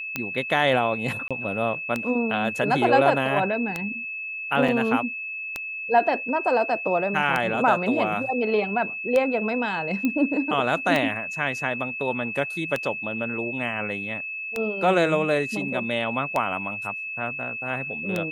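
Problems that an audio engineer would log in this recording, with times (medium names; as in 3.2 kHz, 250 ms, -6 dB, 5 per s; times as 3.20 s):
tick 33 1/3 rpm -11 dBFS
whine 2.6 kHz -30 dBFS
1.28–1.31 s: dropout 26 ms
4.68–4.69 s: dropout 5.3 ms
10.05 s: pop -13 dBFS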